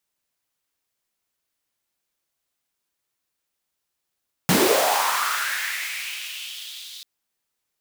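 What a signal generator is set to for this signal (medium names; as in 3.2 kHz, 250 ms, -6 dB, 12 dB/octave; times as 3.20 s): swept filtered noise pink, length 2.54 s highpass, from 140 Hz, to 3.8 kHz, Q 4, linear, gain ramp -22 dB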